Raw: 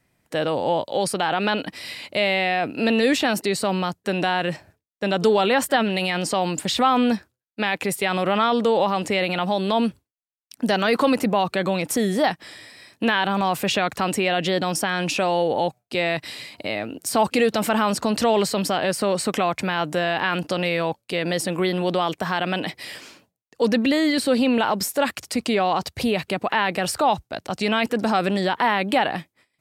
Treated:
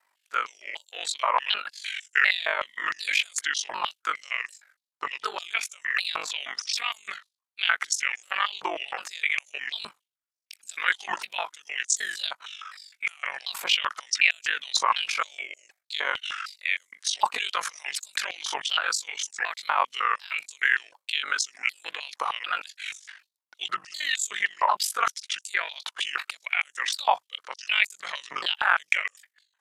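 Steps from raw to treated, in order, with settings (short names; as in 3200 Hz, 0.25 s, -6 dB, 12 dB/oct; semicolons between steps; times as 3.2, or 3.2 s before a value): repeated pitch sweeps -7.5 st, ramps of 0.748 s; ring modulator 24 Hz; stepped high-pass 6.5 Hz 990–7000 Hz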